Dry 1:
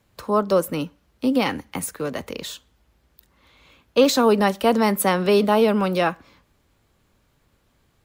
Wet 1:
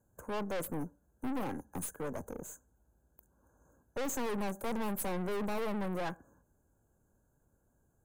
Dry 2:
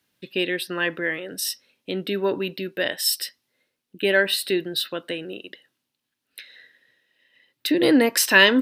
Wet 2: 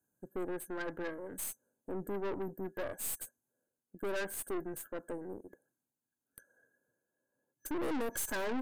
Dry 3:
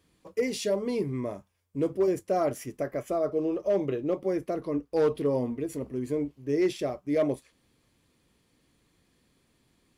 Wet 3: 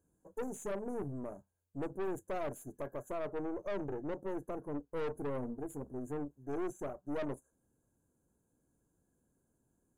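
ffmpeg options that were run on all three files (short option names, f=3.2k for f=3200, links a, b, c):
-af "afftfilt=real='re*(1-between(b*sr/4096,1700,6100))':imag='im*(1-between(b*sr/4096,1700,6100))':win_size=4096:overlap=0.75,equalizer=f=1.2k:w=4.2:g=-13,aeval=exprs='(tanh(28.2*val(0)+0.65)-tanh(0.65))/28.2':c=same,volume=-5dB"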